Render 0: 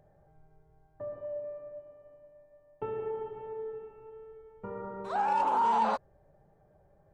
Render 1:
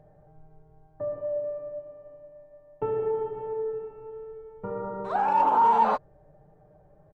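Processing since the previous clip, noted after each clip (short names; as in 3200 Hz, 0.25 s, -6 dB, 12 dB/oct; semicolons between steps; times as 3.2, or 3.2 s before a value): high shelf 2800 Hz -12 dB; comb 6.6 ms, depth 38%; gain +6 dB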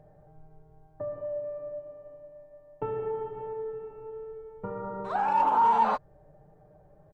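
dynamic EQ 430 Hz, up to -5 dB, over -36 dBFS, Q 0.77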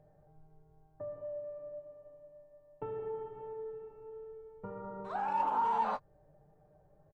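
doubler 20 ms -12 dB; gain -8 dB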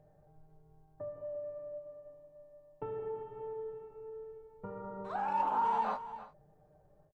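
echo 0.341 s -13.5 dB; ending taper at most 150 dB/s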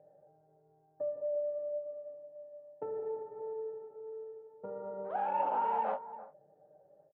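Wiener smoothing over 15 samples; speaker cabinet 250–2600 Hz, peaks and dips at 550 Hz +10 dB, 790 Hz +3 dB, 1100 Hz -9 dB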